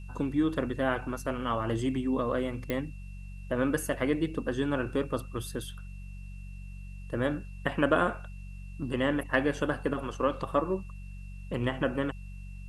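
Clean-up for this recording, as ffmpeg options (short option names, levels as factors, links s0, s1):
-af "adeclick=t=4,bandreject=f=47:t=h:w=4,bandreject=f=94:t=h:w=4,bandreject=f=141:t=h:w=4,bandreject=f=188:t=h:w=4,bandreject=f=2700:w=30,agate=range=0.0891:threshold=0.02"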